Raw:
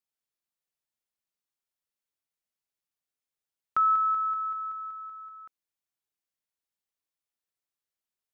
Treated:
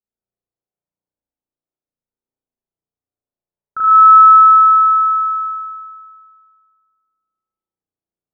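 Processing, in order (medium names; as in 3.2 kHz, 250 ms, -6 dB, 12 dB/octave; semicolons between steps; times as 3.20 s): level-controlled noise filter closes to 600 Hz, open at -29 dBFS; spring tank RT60 2 s, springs 34 ms, chirp 40 ms, DRR -8.5 dB; trim +1 dB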